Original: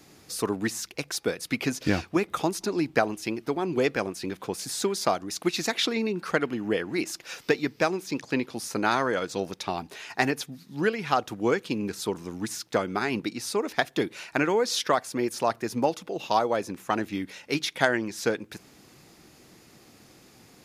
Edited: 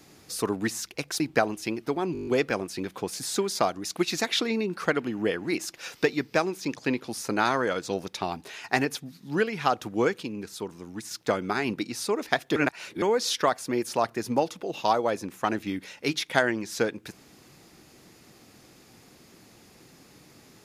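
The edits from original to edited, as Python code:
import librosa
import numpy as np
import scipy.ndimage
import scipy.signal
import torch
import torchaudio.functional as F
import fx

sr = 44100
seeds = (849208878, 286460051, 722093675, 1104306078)

y = fx.edit(x, sr, fx.cut(start_s=1.2, length_s=1.6),
    fx.stutter(start_s=3.73, slice_s=0.02, count=8),
    fx.clip_gain(start_s=11.69, length_s=0.88, db=-5.5),
    fx.reverse_span(start_s=14.02, length_s=0.46), tone=tone)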